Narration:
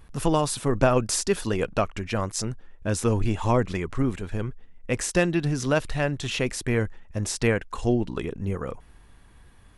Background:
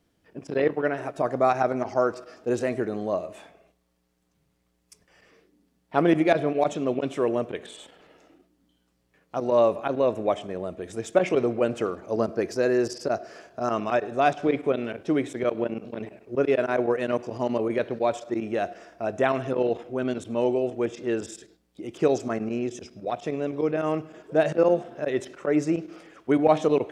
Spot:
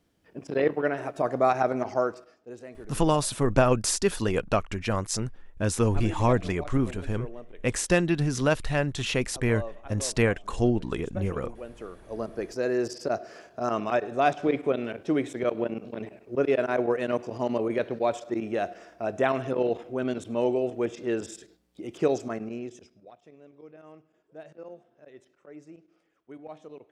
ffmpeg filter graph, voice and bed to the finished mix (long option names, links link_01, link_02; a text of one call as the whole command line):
ffmpeg -i stem1.wav -i stem2.wav -filter_complex "[0:a]adelay=2750,volume=-0.5dB[link_01];[1:a]volume=14.5dB,afade=type=out:start_time=1.91:duration=0.47:silence=0.158489,afade=type=in:start_time=11.69:duration=1.48:silence=0.16788,afade=type=out:start_time=21.94:duration=1.2:silence=0.0794328[link_02];[link_01][link_02]amix=inputs=2:normalize=0" out.wav